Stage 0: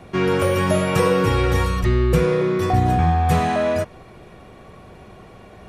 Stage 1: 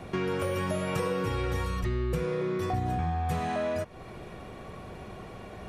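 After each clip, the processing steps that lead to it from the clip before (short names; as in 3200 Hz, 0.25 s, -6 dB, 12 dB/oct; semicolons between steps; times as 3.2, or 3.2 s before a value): compressor 3:1, threshold -31 dBFS, peak gain reduction 14 dB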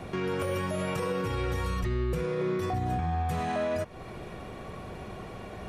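limiter -24 dBFS, peak gain reduction 5.5 dB; gain +2 dB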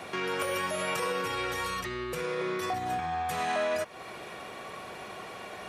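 HPF 1100 Hz 6 dB/oct; gain +6.5 dB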